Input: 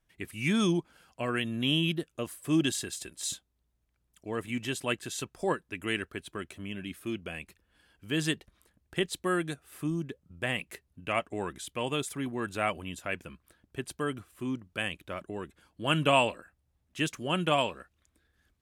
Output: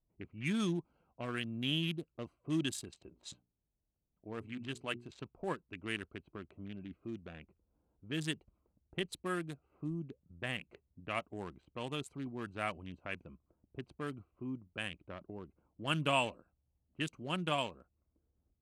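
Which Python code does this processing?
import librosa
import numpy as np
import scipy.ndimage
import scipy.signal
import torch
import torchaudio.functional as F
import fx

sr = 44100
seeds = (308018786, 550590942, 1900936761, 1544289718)

y = fx.hum_notches(x, sr, base_hz=60, count=7, at=(2.91, 5.11))
y = fx.wiener(y, sr, points=25)
y = fx.env_lowpass(y, sr, base_hz=960.0, full_db=-29.0)
y = fx.dynamic_eq(y, sr, hz=480.0, q=0.84, threshold_db=-43.0, ratio=4.0, max_db=-4)
y = y * librosa.db_to_amplitude(-5.5)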